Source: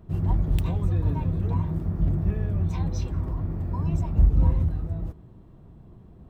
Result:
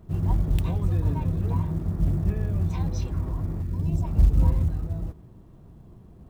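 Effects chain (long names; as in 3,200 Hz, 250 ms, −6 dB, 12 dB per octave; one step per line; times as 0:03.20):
0:03.61–0:04.03: parametric band 560 Hz → 2,200 Hz −15 dB 1.1 octaves
log-companded quantiser 8 bits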